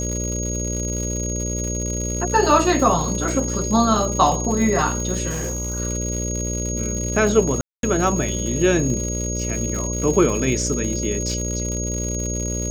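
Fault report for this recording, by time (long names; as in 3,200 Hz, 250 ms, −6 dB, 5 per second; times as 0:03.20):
mains buzz 60 Hz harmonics 10 −26 dBFS
surface crackle 170 per second −26 dBFS
whistle 6,600 Hz −27 dBFS
0:05.29–0:05.80: clipping −22 dBFS
0:07.61–0:07.83: drop-out 222 ms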